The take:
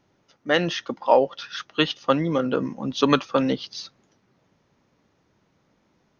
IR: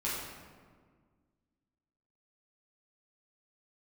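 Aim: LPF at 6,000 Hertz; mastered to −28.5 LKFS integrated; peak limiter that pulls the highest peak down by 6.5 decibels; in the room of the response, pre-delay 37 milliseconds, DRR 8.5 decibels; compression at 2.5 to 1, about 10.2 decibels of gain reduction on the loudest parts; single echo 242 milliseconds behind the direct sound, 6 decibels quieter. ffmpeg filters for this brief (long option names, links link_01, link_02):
-filter_complex "[0:a]lowpass=6000,acompressor=threshold=-28dB:ratio=2.5,alimiter=limit=-18dB:level=0:latency=1,aecho=1:1:242:0.501,asplit=2[link_01][link_02];[1:a]atrim=start_sample=2205,adelay=37[link_03];[link_02][link_03]afir=irnorm=-1:irlink=0,volume=-14.5dB[link_04];[link_01][link_04]amix=inputs=2:normalize=0,volume=3dB"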